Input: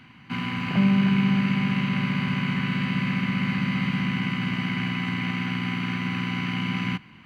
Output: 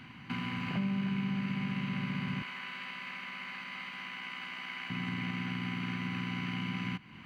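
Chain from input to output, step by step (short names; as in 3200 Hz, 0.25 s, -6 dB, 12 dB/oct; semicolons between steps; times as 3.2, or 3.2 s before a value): compressor 2.5:1, threshold -37 dBFS, peak gain reduction 13.5 dB; 2.42–4.9 HPF 630 Hz 12 dB/oct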